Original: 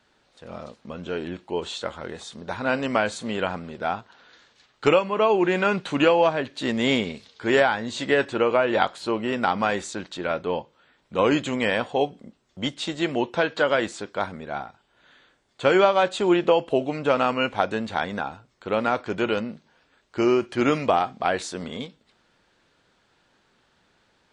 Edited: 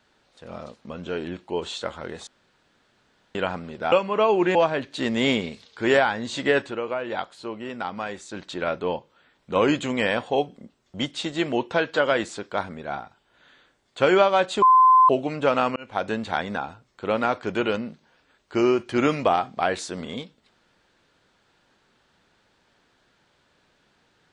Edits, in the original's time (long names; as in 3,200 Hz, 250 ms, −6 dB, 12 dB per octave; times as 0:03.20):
0:02.27–0:03.35: fill with room tone
0:03.92–0:04.93: remove
0:05.56–0:06.18: remove
0:08.23–0:10.06: duck −8 dB, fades 0.16 s
0:16.25–0:16.72: beep over 1,030 Hz −11 dBFS
0:17.39–0:17.73: fade in